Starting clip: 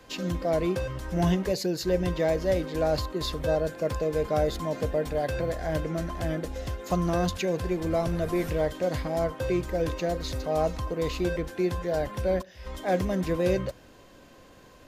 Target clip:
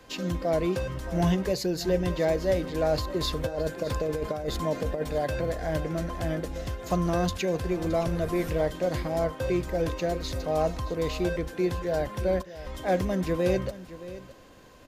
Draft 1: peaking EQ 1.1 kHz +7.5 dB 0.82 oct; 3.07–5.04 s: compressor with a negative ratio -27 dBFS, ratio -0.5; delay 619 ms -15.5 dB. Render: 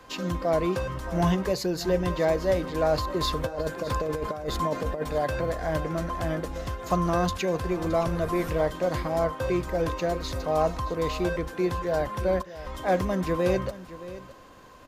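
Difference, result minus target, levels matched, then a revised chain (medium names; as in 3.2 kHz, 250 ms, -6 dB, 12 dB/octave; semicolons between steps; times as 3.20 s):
1 kHz band +3.5 dB
3.07–5.04 s: compressor with a negative ratio -27 dBFS, ratio -0.5; delay 619 ms -15.5 dB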